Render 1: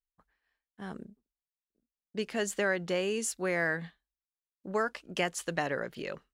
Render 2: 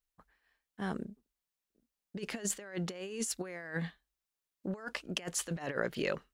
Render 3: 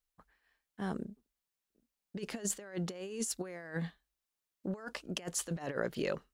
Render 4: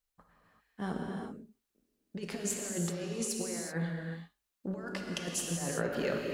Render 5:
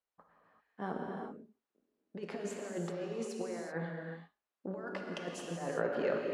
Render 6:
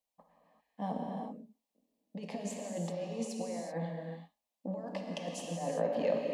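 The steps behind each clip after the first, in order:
negative-ratio compressor -36 dBFS, ratio -0.5
dynamic EQ 2200 Hz, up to -5 dB, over -52 dBFS, Q 0.86
non-linear reverb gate 0.41 s flat, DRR -0.5 dB
band-pass 700 Hz, Q 0.66; gain +2 dB
fixed phaser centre 380 Hz, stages 6; gain +4.5 dB

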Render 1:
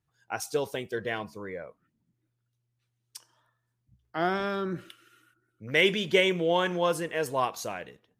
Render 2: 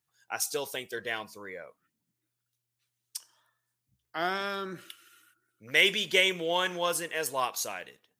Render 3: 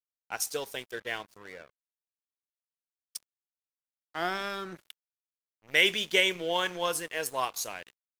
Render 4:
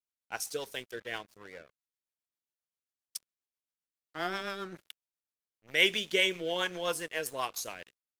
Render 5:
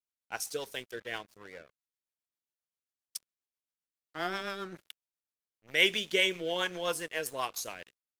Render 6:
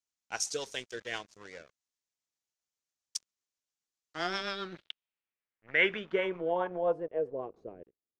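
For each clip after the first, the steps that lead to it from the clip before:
tilt +3 dB/oct; gain -2 dB
crossover distortion -46.5 dBFS
rotary speaker horn 7.5 Hz
nothing audible
low-pass sweep 6600 Hz -> 410 Hz, 4.09–7.51

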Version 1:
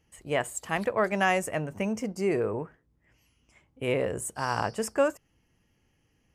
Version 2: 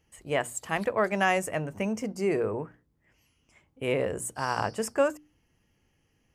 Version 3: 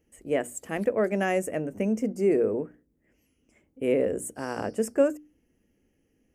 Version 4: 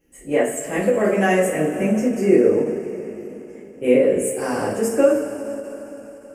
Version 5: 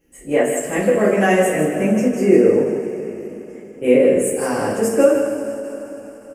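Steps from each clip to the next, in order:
notches 60/120/180/240/300 Hz
graphic EQ 125/250/500/1000/4000 Hz -8/+8/+5/-11/-11 dB
two-slope reverb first 0.37 s, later 4.1 s, from -17 dB, DRR -8.5 dB; ending taper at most 130 dB/s
echo 0.158 s -8 dB; gain +2 dB

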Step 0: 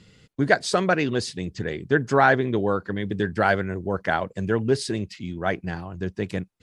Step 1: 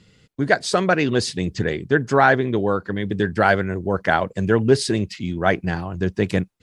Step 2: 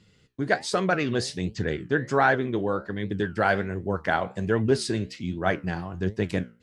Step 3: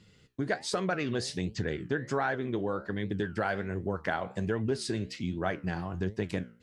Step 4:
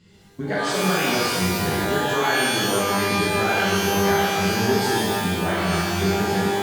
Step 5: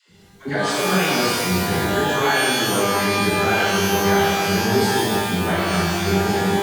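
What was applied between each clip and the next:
AGC gain up to 11.5 dB; gain -1 dB
flange 1.3 Hz, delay 8.7 ms, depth 9.3 ms, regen +72%; gain -1.5 dB
compressor 3:1, threshold -29 dBFS, peak gain reduction 10.5 dB
shimmer reverb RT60 1.5 s, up +12 st, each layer -2 dB, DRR -6.5 dB
dispersion lows, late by 99 ms, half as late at 460 Hz; gain +2 dB

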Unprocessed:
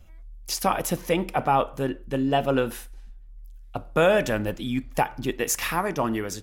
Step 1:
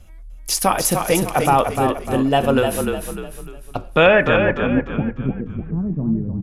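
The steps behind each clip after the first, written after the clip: low-pass sweep 11000 Hz -> 190 Hz, 3.52–5.1; on a send: frequency-shifting echo 0.3 s, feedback 40%, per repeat -32 Hz, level -5.5 dB; on the sum: gain +5.5 dB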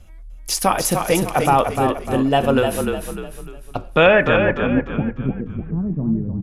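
high shelf 10000 Hz -4.5 dB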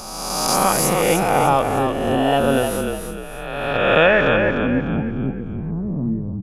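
spectral swells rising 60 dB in 1.73 s; gain -4 dB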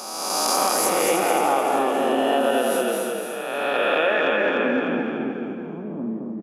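HPF 260 Hz 24 dB/oct; compressor, threshold -18 dBFS, peak gain reduction 9 dB; feedback echo 0.217 s, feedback 39%, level -4 dB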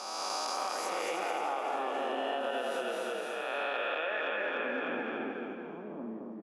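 weighting filter A; compressor, threshold -26 dBFS, peak gain reduction 9 dB; air absorption 64 m; gain -4 dB

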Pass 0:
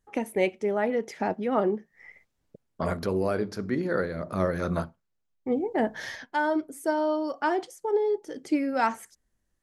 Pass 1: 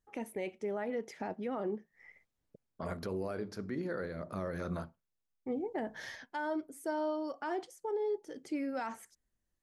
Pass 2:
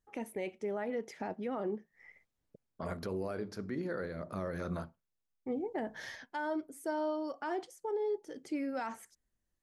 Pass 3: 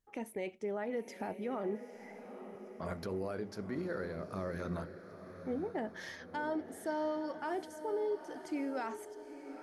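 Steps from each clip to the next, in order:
limiter -20 dBFS, peak gain reduction 9.5 dB; gain -8 dB
nothing audible
diffused feedback echo 0.904 s, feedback 48%, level -11 dB; gain -1 dB

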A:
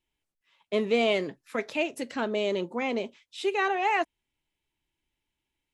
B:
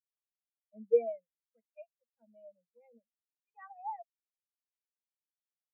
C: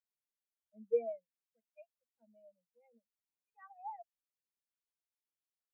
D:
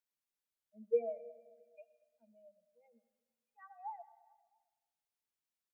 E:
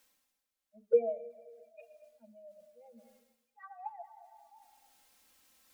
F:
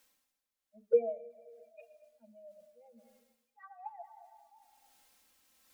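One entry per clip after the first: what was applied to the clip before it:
elliptic band-stop 230–460 Hz, stop band 40 dB; spectral expander 4:1
phaser 0.89 Hz, delay 1.5 ms, feedback 33%; gain -6 dB
feedback echo 0.222 s, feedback 48%, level -22 dB; on a send at -14.5 dB: reverb RT60 1.3 s, pre-delay 70 ms
envelope flanger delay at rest 3.8 ms, full sweep at -36.5 dBFS; reverse; upward compressor, threshold -55 dBFS; reverse; gain +7 dB
tremolo 1.2 Hz, depth 31%

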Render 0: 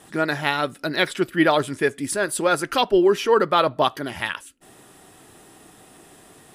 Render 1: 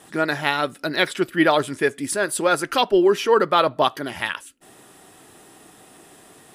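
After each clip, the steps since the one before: low shelf 110 Hz -7.5 dB; gain +1 dB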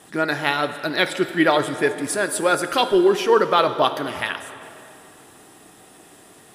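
plate-style reverb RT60 2.7 s, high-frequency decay 0.8×, DRR 9.5 dB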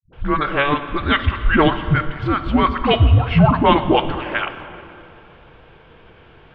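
dispersion highs, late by 0.129 s, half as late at 360 Hz; mistuned SSB -290 Hz 240–3500 Hz; gain +4 dB

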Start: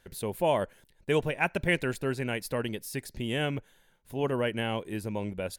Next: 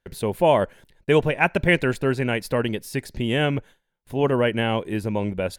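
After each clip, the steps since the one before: gate with hold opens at -50 dBFS; high shelf 5600 Hz -9 dB; gain +8.5 dB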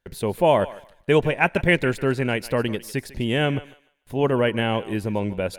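thinning echo 0.149 s, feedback 25%, high-pass 530 Hz, level -16 dB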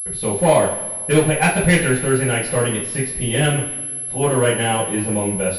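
overloaded stage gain 12.5 dB; two-slope reverb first 0.39 s, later 1.8 s, from -18 dB, DRR -10 dB; pulse-width modulation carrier 11000 Hz; gain -6 dB

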